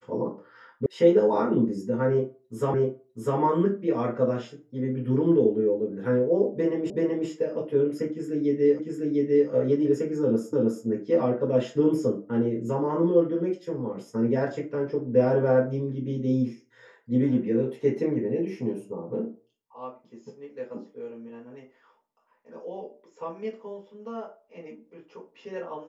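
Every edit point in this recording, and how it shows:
0.86 s: sound stops dead
2.74 s: repeat of the last 0.65 s
6.90 s: repeat of the last 0.38 s
8.79 s: repeat of the last 0.7 s
10.53 s: repeat of the last 0.32 s

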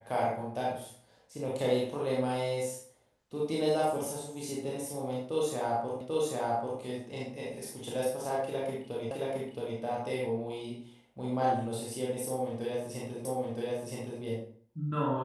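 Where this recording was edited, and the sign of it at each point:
6.01 s: repeat of the last 0.79 s
9.11 s: repeat of the last 0.67 s
13.25 s: repeat of the last 0.97 s

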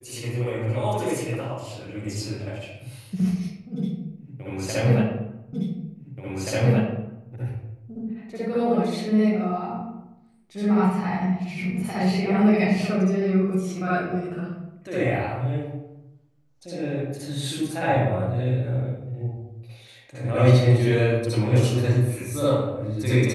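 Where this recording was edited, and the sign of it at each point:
5.53 s: repeat of the last 1.78 s

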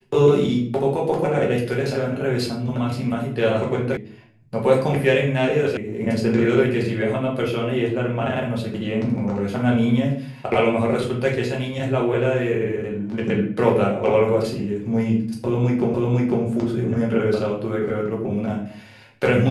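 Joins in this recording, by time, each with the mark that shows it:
3.97 s: sound stops dead
5.77 s: sound stops dead
15.94 s: repeat of the last 0.5 s

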